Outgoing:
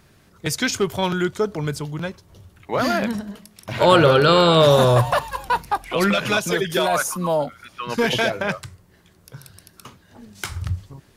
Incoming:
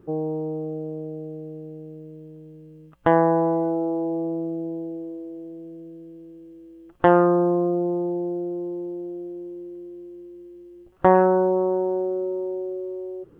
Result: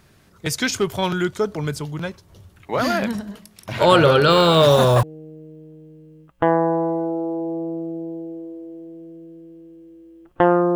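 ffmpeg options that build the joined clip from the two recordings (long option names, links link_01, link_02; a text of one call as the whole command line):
ffmpeg -i cue0.wav -i cue1.wav -filter_complex "[0:a]asettb=1/sr,asplit=3[link_01][link_02][link_03];[link_01]atrim=end=4.304[link_04];[link_02]atrim=start=4.3:end=5.03,asetpts=PTS-STARTPTS,afade=type=in:duration=0.004:curve=qsin,afade=type=out:start_time=0.726:duration=0.004:curve=qsin,acrusher=bits=5:mix=0:aa=0.5[link_05];[link_03]atrim=start=5.026[link_06];[link_04][link_05]acrossfade=duration=0.004:curve1=hsin:curve2=qsin[link_07];[link_07][link_06]acrossfade=duration=0.004:curve1=qsin:curve2=hsin,apad=whole_dur=10.75,atrim=end=10.75,atrim=end=5.032[link_08];[1:a]atrim=start=1.668:end=7.39[link_09];[link_08][link_09]acrossfade=duration=0.004:curve1=hsin:curve2=hsin" out.wav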